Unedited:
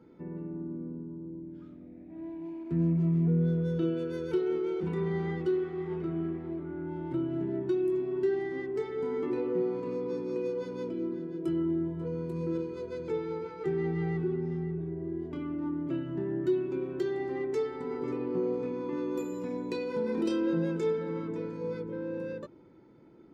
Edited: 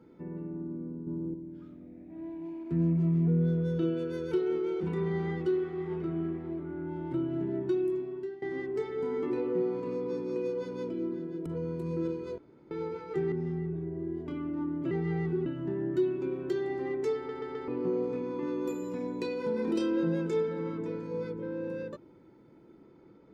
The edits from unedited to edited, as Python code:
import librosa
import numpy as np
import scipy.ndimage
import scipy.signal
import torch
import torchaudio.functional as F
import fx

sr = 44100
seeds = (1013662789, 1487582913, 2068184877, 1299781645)

y = fx.edit(x, sr, fx.clip_gain(start_s=1.07, length_s=0.27, db=6.5),
    fx.fade_out_to(start_s=7.78, length_s=0.64, floor_db=-19.5),
    fx.cut(start_s=11.46, length_s=0.5),
    fx.room_tone_fill(start_s=12.88, length_s=0.33),
    fx.move(start_s=13.82, length_s=0.55, to_s=15.96),
    fx.stutter_over(start_s=17.66, slice_s=0.13, count=4), tone=tone)